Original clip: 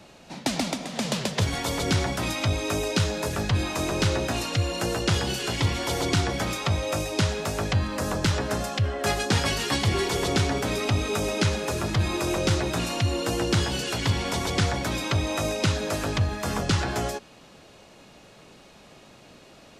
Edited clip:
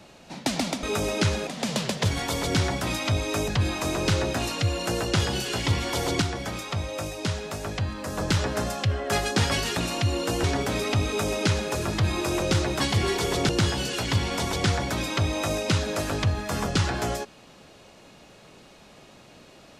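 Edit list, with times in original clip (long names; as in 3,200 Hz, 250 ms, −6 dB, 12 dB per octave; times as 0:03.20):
0:02.84–0:03.42: remove
0:06.16–0:08.12: clip gain −4.5 dB
0:09.71–0:10.40: swap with 0:12.76–0:13.43
0:11.03–0:11.67: duplicate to 0:00.83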